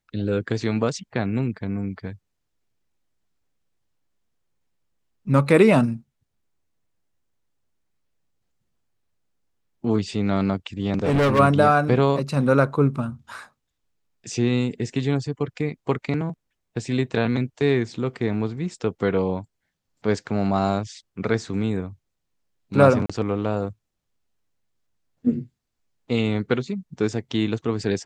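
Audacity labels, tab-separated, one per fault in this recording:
10.950000	11.400000	clipping −16 dBFS
23.060000	23.090000	drop-out 35 ms

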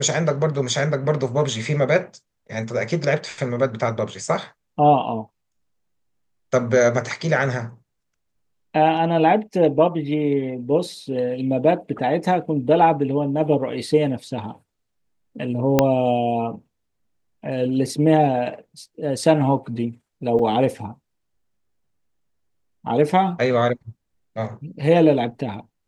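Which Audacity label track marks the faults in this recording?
15.790000	15.790000	click −1 dBFS
20.390000	20.390000	drop-out 4.8 ms

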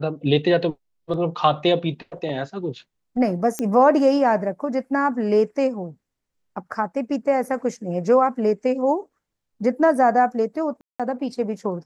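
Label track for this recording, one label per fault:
3.590000	3.590000	click −11 dBFS
10.810000	11.000000	drop-out 186 ms

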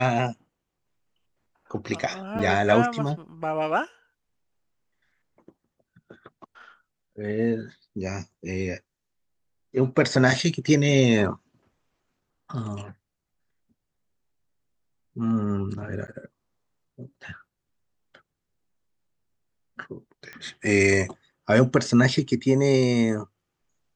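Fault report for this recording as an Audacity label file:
2.390000	2.390000	drop-out 4.3 ms
16.070000	16.080000	drop-out 9.6 ms
20.330000	20.330000	click −24 dBFS

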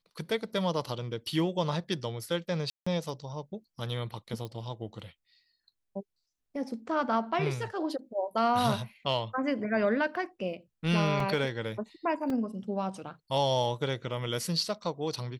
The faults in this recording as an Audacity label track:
2.700000	2.870000	drop-out 165 ms
4.450000	4.450000	click −26 dBFS
11.200000	11.200000	drop-out 2.7 ms
12.300000	12.300000	drop-out 2.4 ms

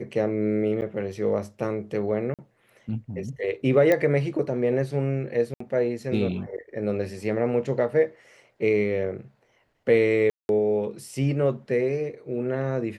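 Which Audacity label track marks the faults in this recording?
0.810000	0.820000	drop-out 9.3 ms
2.340000	2.390000	drop-out 47 ms
3.920000	3.920000	click −10 dBFS
5.540000	5.600000	drop-out 64 ms
10.300000	10.490000	drop-out 191 ms

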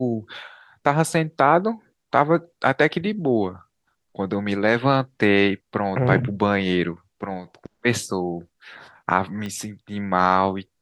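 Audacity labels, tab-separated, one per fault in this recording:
9.460000	9.460000	click −19 dBFS

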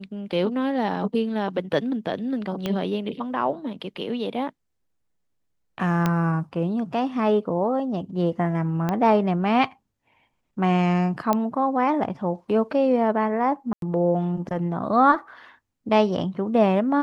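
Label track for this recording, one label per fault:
2.660000	2.660000	click −13 dBFS
6.060000	6.060000	click −9 dBFS
8.890000	8.890000	click −12 dBFS
11.330000	11.330000	click −9 dBFS
13.730000	13.820000	drop-out 92 ms

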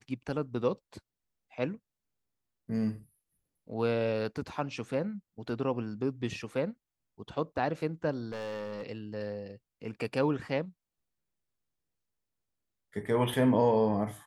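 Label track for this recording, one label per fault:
8.300000	8.840000	clipping −34 dBFS

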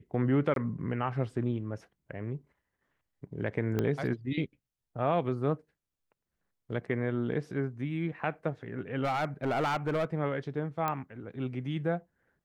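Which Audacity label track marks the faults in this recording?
0.540000	0.560000	drop-out 22 ms
3.790000	3.790000	click −17 dBFS
9.030000	10.050000	clipping −25.5 dBFS
10.880000	10.880000	click −17 dBFS

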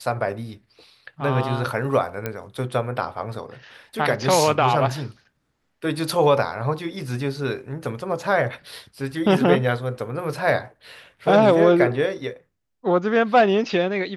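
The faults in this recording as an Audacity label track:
2.260000	2.260000	click −12 dBFS

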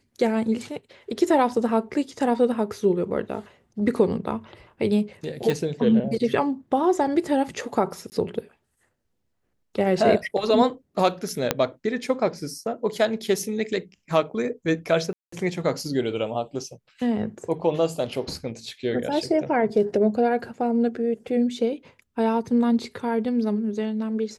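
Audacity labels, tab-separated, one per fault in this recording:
5.500000	5.500000	click
8.100000	8.120000	drop-out 19 ms
11.510000	11.510000	click −4 dBFS
15.130000	15.320000	drop-out 194 ms

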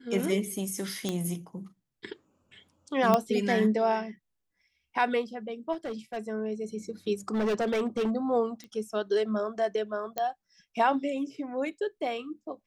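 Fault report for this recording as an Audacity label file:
1.090000	1.090000	click −16 dBFS
3.140000	3.140000	click −10 dBFS
5.720000	6.180000	clipping −30.5 dBFS
7.280000	8.110000	clipping −24 dBFS
8.640000	8.640000	click −29 dBFS
10.180000	10.180000	click −16 dBFS

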